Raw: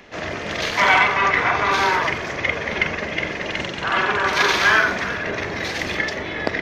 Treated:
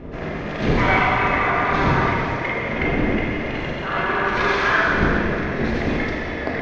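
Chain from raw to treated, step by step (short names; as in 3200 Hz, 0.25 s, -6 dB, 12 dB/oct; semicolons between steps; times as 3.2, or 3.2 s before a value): wind noise 300 Hz -25 dBFS; Bessel low-pass 5500 Hz, order 2; high shelf 3000 Hz -11 dB; notches 50/100/150 Hz; plate-style reverb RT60 2.5 s, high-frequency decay 0.95×, DRR -3 dB; gain -4 dB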